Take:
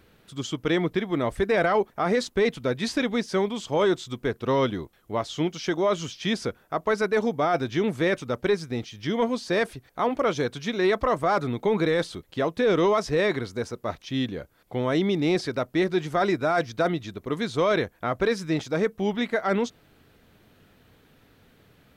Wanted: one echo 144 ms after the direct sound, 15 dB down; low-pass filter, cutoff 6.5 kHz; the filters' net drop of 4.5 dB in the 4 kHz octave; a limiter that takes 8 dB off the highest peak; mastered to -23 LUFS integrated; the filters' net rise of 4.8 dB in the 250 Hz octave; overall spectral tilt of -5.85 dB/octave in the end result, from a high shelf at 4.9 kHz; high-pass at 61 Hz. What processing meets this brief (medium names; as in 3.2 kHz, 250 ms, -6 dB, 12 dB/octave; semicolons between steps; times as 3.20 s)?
high-pass 61 Hz; low-pass 6.5 kHz; peaking EQ 250 Hz +6.5 dB; peaking EQ 4 kHz -3.5 dB; treble shelf 4.9 kHz -3.5 dB; peak limiter -18.5 dBFS; delay 144 ms -15 dB; trim +5.5 dB